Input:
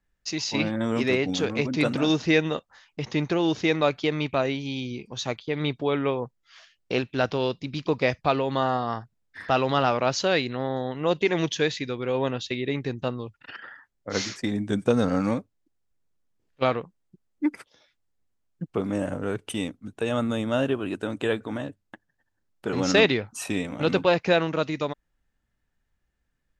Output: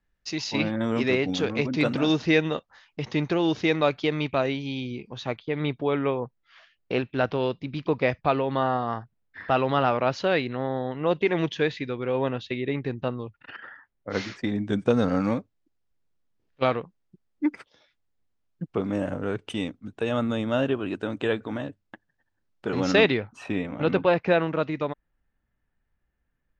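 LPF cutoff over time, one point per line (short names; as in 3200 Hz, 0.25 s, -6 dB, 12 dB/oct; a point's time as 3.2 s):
4.49 s 5200 Hz
5.18 s 2900 Hz
14.24 s 2900 Hz
14.77 s 5100 Hz
22.76 s 5100 Hz
23.41 s 2500 Hz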